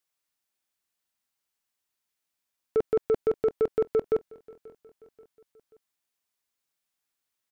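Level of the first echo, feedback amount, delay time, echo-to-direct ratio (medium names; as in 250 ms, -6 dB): -22.5 dB, 49%, 534 ms, -21.5 dB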